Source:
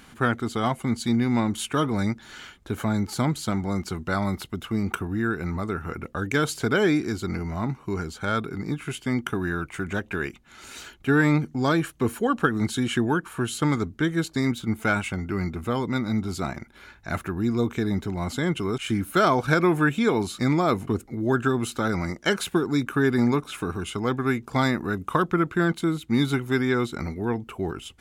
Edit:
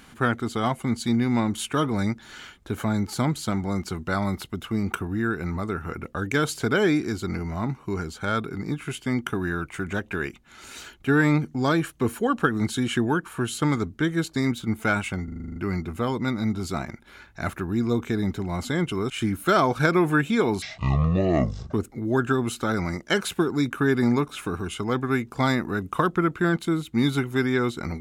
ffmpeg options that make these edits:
-filter_complex "[0:a]asplit=11[s0][s1][s2][s3][s4][s5][s6][s7][s8][s9][s10];[s0]atrim=end=15.282[s11];[s1]atrim=start=15.238:end=15.282[s12];[s2]atrim=start=15.238:end=15.282[s13];[s3]atrim=start=15.238:end=15.282[s14];[s4]atrim=start=15.238:end=15.282[s15];[s5]atrim=start=15.238:end=15.282[s16];[s6]atrim=start=15.238:end=15.282[s17];[s7]atrim=start=15.238:end=15.282[s18];[s8]atrim=start=15.238:end=20.304[s19];[s9]atrim=start=20.3:end=20.89,asetpts=PTS-STARTPTS,asetrate=23373,aresample=44100,atrim=end_sample=49092,asetpts=PTS-STARTPTS[s20];[s10]atrim=start=20.886[s21];[s11][s12]acrossfade=d=0.004:c1=hsin:c2=hsin[s22];[s22][s13]acrossfade=d=0.004:c1=hsin:c2=hsin[s23];[s23][s14]acrossfade=d=0.004:c1=hsin:c2=hsin[s24];[s24][s15]acrossfade=d=0.004:c1=hsin:c2=hsin[s25];[s25][s16]acrossfade=d=0.004:c1=hsin:c2=hsin[s26];[s26][s17]acrossfade=d=0.004:c1=hsin:c2=hsin[s27];[s27][s18]acrossfade=d=0.004:c1=hsin:c2=hsin[s28];[s28][s19]acrossfade=d=0.004:c1=hsin:c2=hsin[s29];[s29][s20]acrossfade=d=0.004:c1=hsin:c2=hsin[s30];[s30][s21]acrossfade=d=0.004:c1=hsin:c2=hsin"

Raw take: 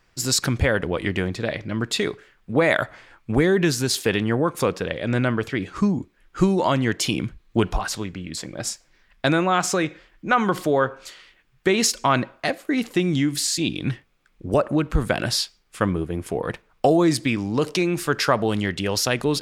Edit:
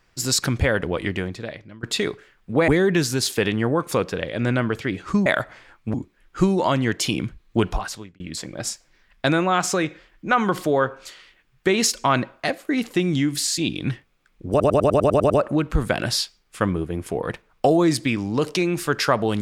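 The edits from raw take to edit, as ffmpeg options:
-filter_complex "[0:a]asplit=14[s0][s1][s2][s3][s4][s5][s6][s7][s8][s9][s10][s11][s12][s13];[s0]atrim=end=1.83,asetpts=PTS-STARTPTS,afade=t=out:st=0.99:d=0.84:silence=0.0668344[s14];[s1]atrim=start=1.83:end=2.682,asetpts=PTS-STARTPTS,afade=t=in:d=0.004:c=hsin:silence=0.0668344[s15];[s2]atrim=start=3.358:end=5.942[s16];[s3]atrim=start=2.678:end=3.362[s17];[s4]atrim=start=5.938:end=8.2,asetpts=PTS-STARTPTS,afade=t=out:st=1.772:d=0.49[s18];[s5]atrim=start=8.2:end=14.602,asetpts=PTS-STARTPTS,afade=t=in:d=0.004:c=hsin[s19];[s6]atrim=start=14.498:end=14.602[s20];[s7]atrim=start=14.498:end=14.602[s21];[s8]atrim=start=14.498:end=14.602[s22];[s9]atrim=start=14.498:end=14.602[s23];[s10]atrim=start=14.498:end=14.602[s24];[s11]atrim=start=14.498:end=14.602[s25];[s12]atrim=start=14.498:end=14.602[s26];[s13]atrim=start=14.498[s27];[s14][s15]concat=n=2:v=0:a=1[s28];[s28][s16]acrossfade=d=0.004:c1=hsin:c2=hsin[s29];[s29][s17]acrossfade=d=0.004:c1=hsin:c2=hsin[s30];[s18][s19]concat=n=2:v=0:a=1[s31];[s30][s31]acrossfade=d=0.004:c1=hsin:c2=hsin[s32];[s32][s20]acrossfade=d=0.004:c1=hsin:c2=hsin[s33];[s33][s21]acrossfade=d=0.004:c1=hsin:c2=hsin[s34];[s34][s22]acrossfade=d=0.004:c1=hsin:c2=hsin[s35];[s35][s23]acrossfade=d=0.004:c1=hsin:c2=hsin[s36];[s36][s24]acrossfade=d=0.004:c1=hsin:c2=hsin[s37];[s37][s25]acrossfade=d=0.004:c1=hsin:c2=hsin[s38];[s38][s26]acrossfade=d=0.004:c1=hsin:c2=hsin[s39];[s39][s27]acrossfade=d=0.004:c1=hsin:c2=hsin"

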